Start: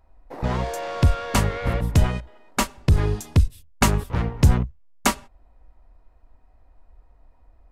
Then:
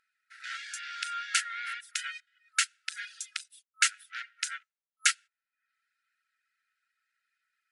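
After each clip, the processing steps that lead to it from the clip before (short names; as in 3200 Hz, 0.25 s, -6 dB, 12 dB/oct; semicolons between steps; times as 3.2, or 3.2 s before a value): reverb removal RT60 0.53 s; FFT band-pass 1300–11000 Hz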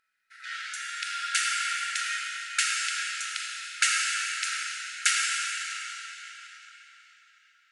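digital reverb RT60 4.2 s, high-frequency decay 0.9×, pre-delay 0 ms, DRR -4 dB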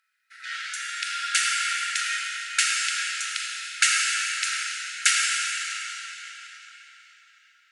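HPF 1200 Hz; gain +4 dB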